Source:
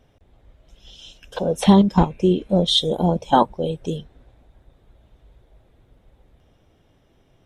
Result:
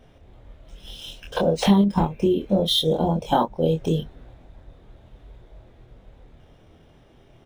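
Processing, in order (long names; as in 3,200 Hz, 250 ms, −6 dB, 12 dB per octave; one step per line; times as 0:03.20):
downward compressor 3 to 1, threshold −25 dBFS, peak gain reduction 13 dB
double-tracking delay 25 ms −3 dB
linearly interpolated sample-rate reduction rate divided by 3×
level +4.5 dB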